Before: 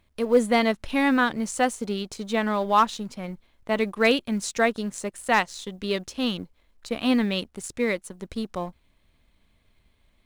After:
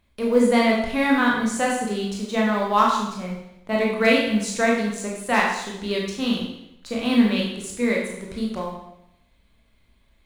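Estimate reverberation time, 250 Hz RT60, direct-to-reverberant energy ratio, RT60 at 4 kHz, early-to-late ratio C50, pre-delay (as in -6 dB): 0.80 s, 0.80 s, -3.0 dB, 0.80 s, 2.5 dB, 21 ms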